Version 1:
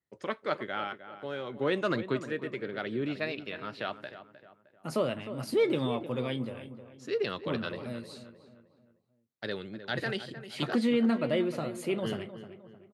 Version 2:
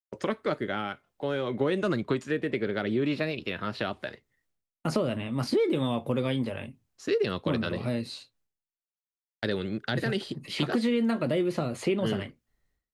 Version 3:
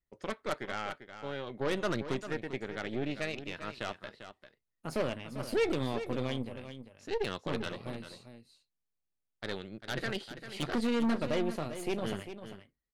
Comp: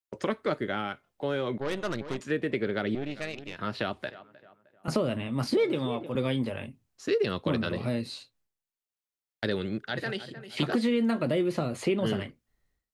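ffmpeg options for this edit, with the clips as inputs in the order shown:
-filter_complex "[2:a]asplit=2[a][b];[0:a]asplit=3[c][d][e];[1:a]asplit=6[f][g][h][i][j][k];[f]atrim=end=1.582[l];[a]atrim=start=1.578:end=2.202[m];[g]atrim=start=2.198:end=2.952[n];[b]atrim=start=2.948:end=3.592[o];[h]atrim=start=3.588:end=4.102[p];[c]atrim=start=4.098:end=4.882[q];[i]atrim=start=4.878:end=5.572[r];[d]atrim=start=5.568:end=6.152[s];[j]atrim=start=6.148:end=9.882[t];[e]atrim=start=9.878:end=10.572[u];[k]atrim=start=10.568[v];[l][m]acrossfade=d=0.004:c1=hsin:c2=hsin[w];[w][n]acrossfade=d=0.004:c1=hsin:c2=hsin[x];[x][o]acrossfade=d=0.004:c1=hsin:c2=hsin[y];[y][p]acrossfade=d=0.004:c1=hsin:c2=hsin[z];[z][q]acrossfade=d=0.004:c1=hsin:c2=hsin[aa];[aa][r]acrossfade=d=0.004:c1=hsin:c2=hsin[ab];[ab][s]acrossfade=d=0.004:c1=hsin:c2=hsin[ac];[ac][t]acrossfade=d=0.004:c1=hsin:c2=hsin[ad];[ad][u]acrossfade=d=0.004:c1=hsin:c2=hsin[ae];[ae][v]acrossfade=d=0.004:c1=hsin:c2=hsin"

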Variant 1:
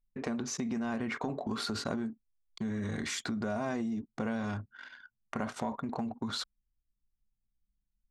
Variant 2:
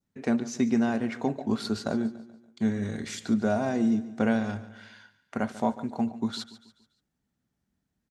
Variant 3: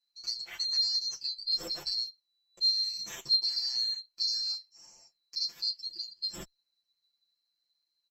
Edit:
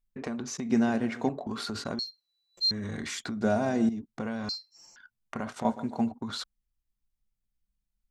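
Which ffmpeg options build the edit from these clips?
-filter_complex "[1:a]asplit=3[a][b][c];[2:a]asplit=2[d][e];[0:a]asplit=6[f][g][h][i][j][k];[f]atrim=end=0.702[l];[a]atrim=start=0.698:end=1.292[m];[g]atrim=start=1.288:end=1.992[n];[d]atrim=start=1.988:end=2.712[o];[h]atrim=start=2.708:end=3.412[p];[b]atrim=start=3.408:end=3.892[q];[i]atrim=start=3.888:end=4.492[r];[e]atrim=start=4.488:end=4.962[s];[j]atrim=start=4.958:end=5.652[t];[c]atrim=start=5.648:end=6.122[u];[k]atrim=start=6.118[v];[l][m]acrossfade=d=0.004:c1=hsin:c2=hsin[w];[w][n]acrossfade=d=0.004:c1=hsin:c2=hsin[x];[x][o]acrossfade=d=0.004:c1=hsin:c2=hsin[y];[y][p]acrossfade=d=0.004:c1=hsin:c2=hsin[z];[z][q]acrossfade=d=0.004:c1=hsin:c2=hsin[aa];[aa][r]acrossfade=d=0.004:c1=hsin:c2=hsin[ab];[ab][s]acrossfade=d=0.004:c1=hsin:c2=hsin[ac];[ac][t]acrossfade=d=0.004:c1=hsin:c2=hsin[ad];[ad][u]acrossfade=d=0.004:c1=hsin:c2=hsin[ae];[ae][v]acrossfade=d=0.004:c1=hsin:c2=hsin"

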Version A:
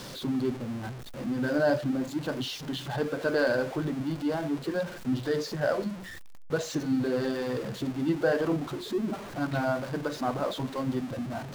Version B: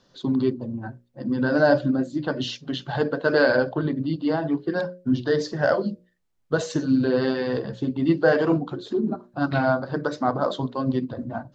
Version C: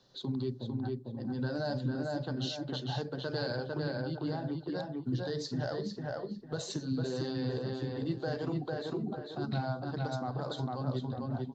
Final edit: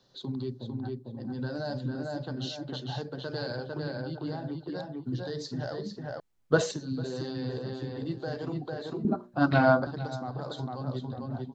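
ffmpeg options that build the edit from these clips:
-filter_complex "[1:a]asplit=2[a][b];[2:a]asplit=3[c][d][e];[c]atrim=end=6.202[f];[a]atrim=start=6.198:end=6.712[g];[d]atrim=start=6.708:end=9.052[h];[b]atrim=start=9.048:end=9.872[i];[e]atrim=start=9.868[j];[f][g]acrossfade=d=0.004:c1=hsin:c2=hsin[k];[k][h]acrossfade=d=0.004:c1=hsin:c2=hsin[l];[l][i]acrossfade=d=0.004:c1=hsin:c2=hsin[m];[m][j]acrossfade=d=0.004:c1=hsin:c2=hsin"

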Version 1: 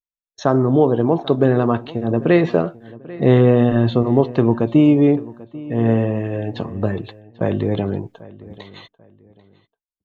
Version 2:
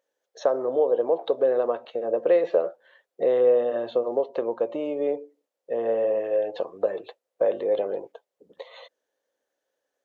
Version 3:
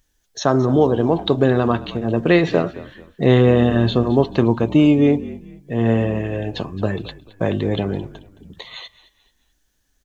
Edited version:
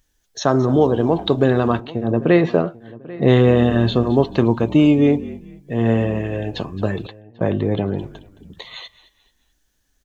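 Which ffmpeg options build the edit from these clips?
-filter_complex "[0:a]asplit=2[a][b];[2:a]asplit=3[c][d][e];[c]atrim=end=1.802[f];[a]atrim=start=1.798:end=3.282[g];[d]atrim=start=3.278:end=7.072[h];[b]atrim=start=7.068:end=7.982[i];[e]atrim=start=7.978[j];[f][g]acrossfade=d=0.004:c1=hsin:c2=hsin[k];[k][h]acrossfade=d=0.004:c1=hsin:c2=hsin[l];[l][i]acrossfade=d=0.004:c1=hsin:c2=hsin[m];[m][j]acrossfade=d=0.004:c1=hsin:c2=hsin"

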